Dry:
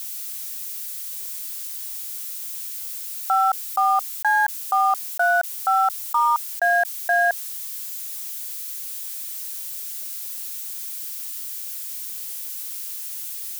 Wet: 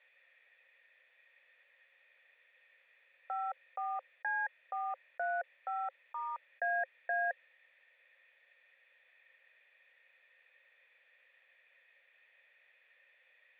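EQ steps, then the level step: cascade formant filter e; high-pass 190 Hz 24 dB/octave; peaking EQ 330 Hz -11.5 dB 1.2 oct; +3.0 dB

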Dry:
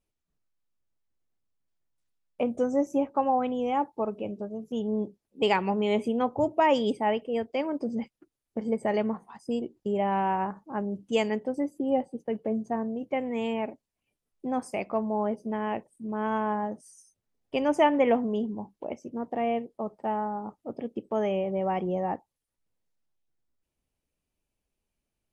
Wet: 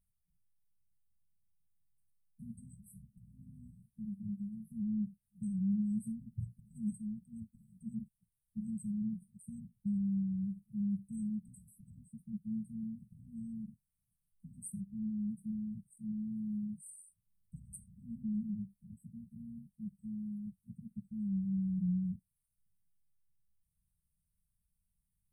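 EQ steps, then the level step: brick-wall FIR band-stop 210–8000 Hz; +3.0 dB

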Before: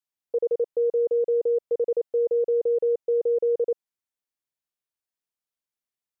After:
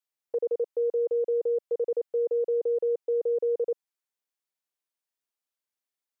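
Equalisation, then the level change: dynamic bell 500 Hz, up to -3 dB, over -35 dBFS, Q 0.92; high-pass 280 Hz 12 dB/octave; 0.0 dB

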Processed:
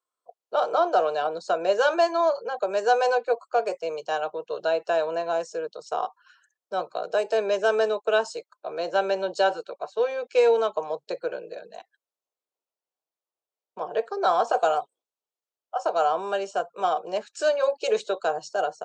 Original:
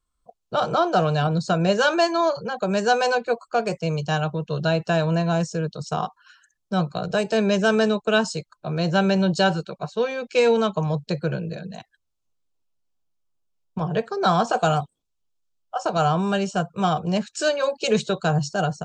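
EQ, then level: high-pass 450 Hz 24 dB/octave; tilt shelf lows +6 dB; -2.0 dB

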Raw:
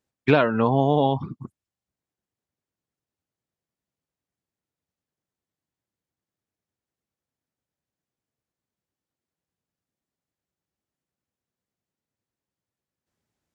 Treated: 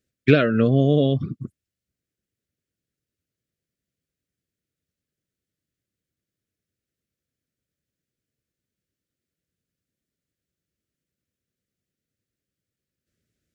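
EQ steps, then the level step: Butterworth band-stop 900 Hz, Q 1.1; bass shelf 150 Hz +5 dB; +2.5 dB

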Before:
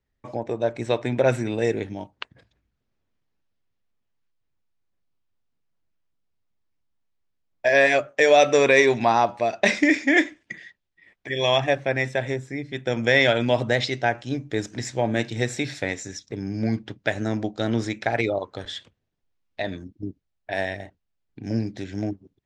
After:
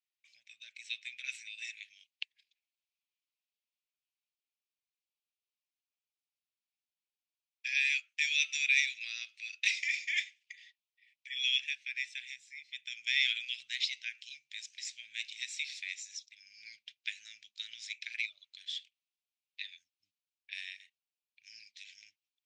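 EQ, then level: elliptic high-pass 2.4 kHz, stop band 60 dB; distance through air 72 m; -1.5 dB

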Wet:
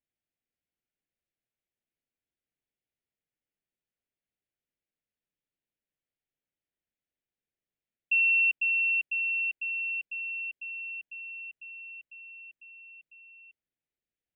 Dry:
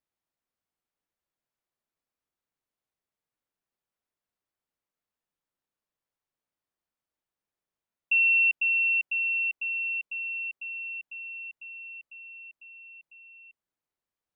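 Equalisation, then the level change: distance through air 300 m; treble shelf 2.6 kHz +5.5 dB; static phaser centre 2.6 kHz, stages 4; 0.0 dB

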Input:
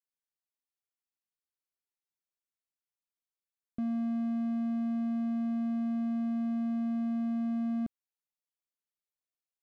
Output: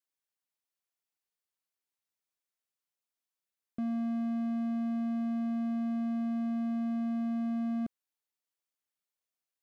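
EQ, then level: bass shelf 150 Hz -9 dB; +2.0 dB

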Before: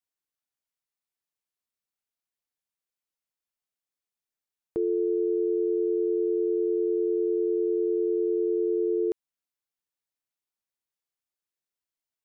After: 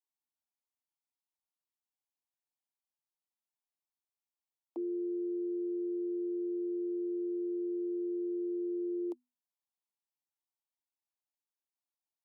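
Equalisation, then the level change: rippled Chebyshev high-pass 240 Hz, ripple 9 dB; static phaser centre 420 Hz, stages 6; 0.0 dB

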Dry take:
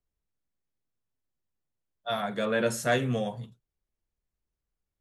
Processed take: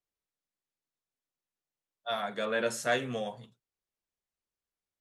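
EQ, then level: RIAA curve recording; tape spacing loss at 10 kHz 22 dB; treble shelf 8.3 kHz +6 dB; 0.0 dB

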